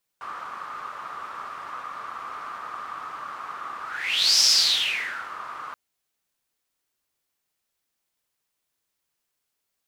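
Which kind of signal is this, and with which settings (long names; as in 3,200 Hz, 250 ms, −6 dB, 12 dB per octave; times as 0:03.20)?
pass-by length 5.53 s, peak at 0:04.21, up 0.63 s, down 1.00 s, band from 1,200 Hz, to 5,300 Hz, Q 8, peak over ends 18.5 dB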